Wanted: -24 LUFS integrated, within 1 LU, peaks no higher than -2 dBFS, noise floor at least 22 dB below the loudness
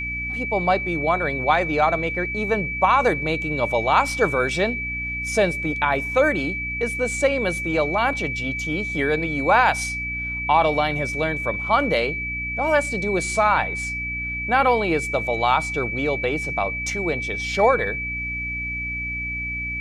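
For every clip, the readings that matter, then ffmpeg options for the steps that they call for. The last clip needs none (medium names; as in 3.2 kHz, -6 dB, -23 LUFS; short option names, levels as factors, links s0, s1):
hum 60 Hz; highest harmonic 300 Hz; hum level -32 dBFS; steady tone 2.3 kHz; tone level -26 dBFS; loudness -21.5 LUFS; peak level -4.0 dBFS; loudness target -24.0 LUFS
-> -af "bandreject=f=60:t=h:w=4,bandreject=f=120:t=h:w=4,bandreject=f=180:t=h:w=4,bandreject=f=240:t=h:w=4,bandreject=f=300:t=h:w=4"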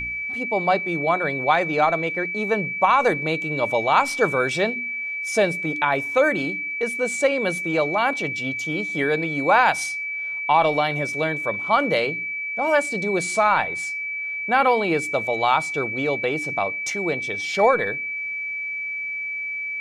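hum not found; steady tone 2.3 kHz; tone level -26 dBFS
-> -af "bandreject=f=2300:w=30"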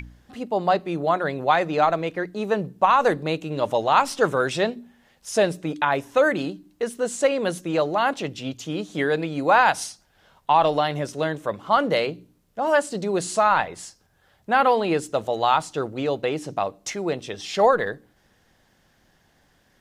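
steady tone not found; loudness -23.0 LUFS; peak level -5.0 dBFS; loudness target -24.0 LUFS
-> -af "volume=0.891"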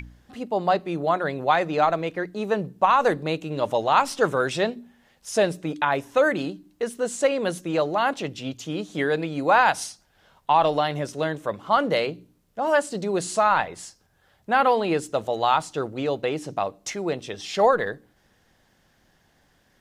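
loudness -24.0 LUFS; peak level -6.0 dBFS; noise floor -64 dBFS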